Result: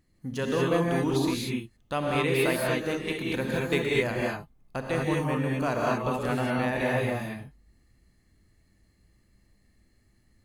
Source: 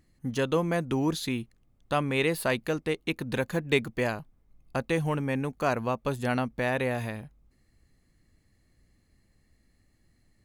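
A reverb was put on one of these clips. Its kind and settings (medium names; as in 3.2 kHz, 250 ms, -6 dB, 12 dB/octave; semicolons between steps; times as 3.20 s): gated-style reverb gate 260 ms rising, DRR -3.5 dB; trim -3.5 dB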